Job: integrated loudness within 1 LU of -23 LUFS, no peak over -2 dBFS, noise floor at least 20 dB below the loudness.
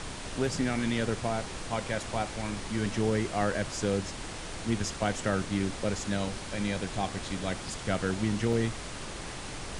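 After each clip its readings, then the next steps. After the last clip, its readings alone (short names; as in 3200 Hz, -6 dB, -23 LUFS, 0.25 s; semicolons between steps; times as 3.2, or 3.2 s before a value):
dropouts 1; longest dropout 2.4 ms; noise floor -40 dBFS; noise floor target -52 dBFS; loudness -32.0 LUFS; peak -13.5 dBFS; loudness target -23.0 LUFS
-> interpolate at 8.53, 2.4 ms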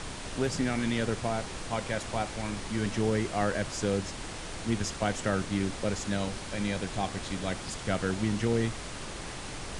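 dropouts 0; noise floor -40 dBFS; noise floor target -52 dBFS
-> noise print and reduce 12 dB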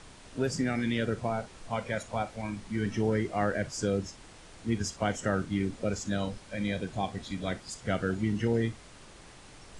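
noise floor -52 dBFS; loudness -32.0 LUFS; peak -14.0 dBFS; loudness target -23.0 LUFS
-> gain +9 dB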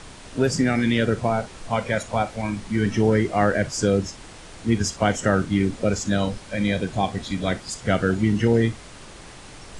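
loudness -23.0 LUFS; peak -5.0 dBFS; noise floor -43 dBFS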